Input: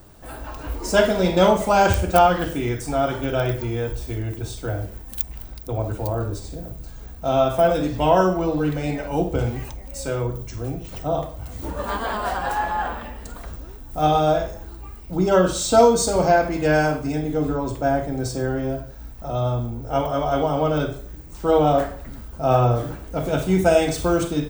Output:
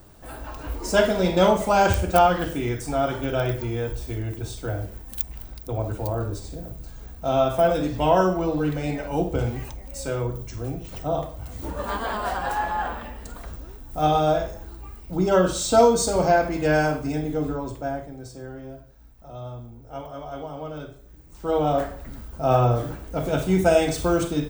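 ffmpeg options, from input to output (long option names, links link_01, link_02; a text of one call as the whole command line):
ffmpeg -i in.wav -af "volume=10dB,afade=type=out:start_time=17.22:duration=0.96:silence=0.266073,afade=type=in:start_time=20.99:duration=1.13:silence=0.251189" out.wav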